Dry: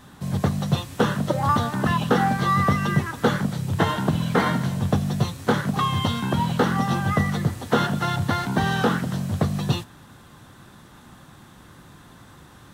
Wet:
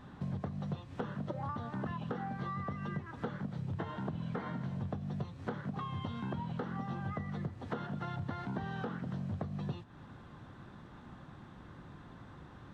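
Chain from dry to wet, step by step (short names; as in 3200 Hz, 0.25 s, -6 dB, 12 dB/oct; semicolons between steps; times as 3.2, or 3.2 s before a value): compressor 12:1, threshold -31 dBFS, peak gain reduction 17.5 dB; tape spacing loss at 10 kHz 26 dB; gain -3 dB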